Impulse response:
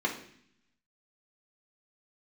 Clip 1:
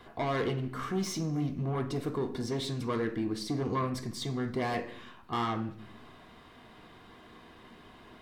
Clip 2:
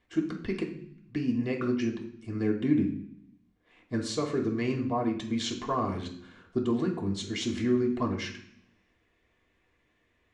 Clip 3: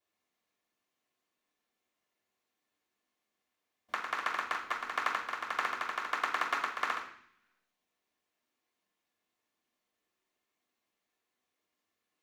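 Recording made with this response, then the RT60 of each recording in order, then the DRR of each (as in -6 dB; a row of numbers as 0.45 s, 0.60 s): 2; 0.60 s, 0.60 s, 0.60 s; 3.0 dB, -2.0 dB, -8.5 dB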